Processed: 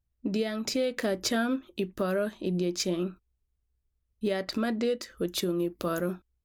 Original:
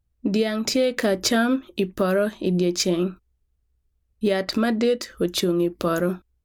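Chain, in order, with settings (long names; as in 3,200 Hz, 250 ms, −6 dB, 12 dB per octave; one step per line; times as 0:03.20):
0:05.28–0:06.10: high-shelf EQ 12,000 Hz +8 dB
level −7.5 dB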